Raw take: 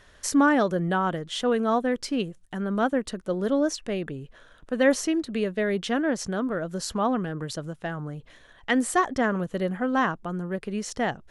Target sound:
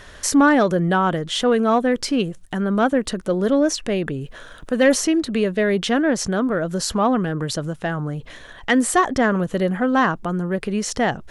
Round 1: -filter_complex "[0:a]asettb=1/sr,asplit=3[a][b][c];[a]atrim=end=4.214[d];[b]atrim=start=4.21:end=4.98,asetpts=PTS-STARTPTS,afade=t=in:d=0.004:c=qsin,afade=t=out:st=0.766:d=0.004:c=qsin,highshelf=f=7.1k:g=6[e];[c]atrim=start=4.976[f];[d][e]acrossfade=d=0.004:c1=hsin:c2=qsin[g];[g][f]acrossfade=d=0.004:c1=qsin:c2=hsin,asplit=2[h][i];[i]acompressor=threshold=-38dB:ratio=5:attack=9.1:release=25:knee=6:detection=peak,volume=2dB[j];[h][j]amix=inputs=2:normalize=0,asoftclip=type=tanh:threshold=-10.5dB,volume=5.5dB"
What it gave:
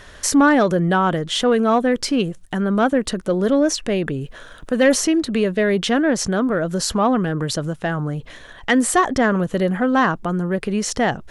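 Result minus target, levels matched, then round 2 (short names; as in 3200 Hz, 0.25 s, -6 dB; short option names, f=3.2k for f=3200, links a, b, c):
compressor: peak gain reduction -6 dB
-filter_complex "[0:a]asettb=1/sr,asplit=3[a][b][c];[a]atrim=end=4.214[d];[b]atrim=start=4.21:end=4.98,asetpts=PTS-STARTPTS,afade=t=in:d=0.004:c=qsin,afade=t=out:st=0.766:d=0.004:c=qsin,highshelf=f=7.1k:g=6[e];[c]atrim=start=4.976[f];[d][e]acrossfade=d=0.004:c1=hsin:c2=qsin[g];[g][f]acrossfade=d=0.004:c1=qsin:c2=hsin,asplit=2[h][i];[i]acompressor=threshold=-45.5dB:ratio=5:attack=9.1:release=25:knee=6:detection=peak,volume=2dB[j];[h][j]amix=inputs=2:normalize=0,asoftclip=type=tanh:threshold=-10.5dB,volume=5.5dB"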